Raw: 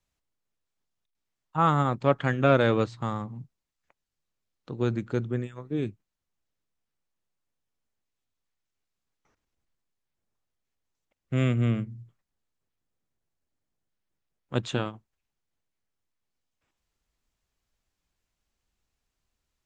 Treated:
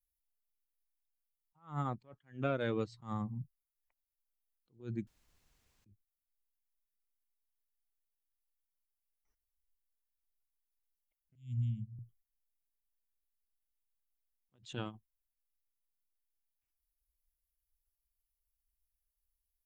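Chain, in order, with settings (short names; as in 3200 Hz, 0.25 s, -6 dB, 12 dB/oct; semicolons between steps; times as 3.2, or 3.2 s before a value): per-bin expansion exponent 1.5; compressor 8:1, threshold -38 dBFS, peak gain reduction 21 dB; 5.07–5.86 room tone; 11.35–11.99 inverse Chebyshev band-stop 450–1400 Hz, stop band 60 dB; attack slew limiter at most 190 dB/s; gain +7.5 dB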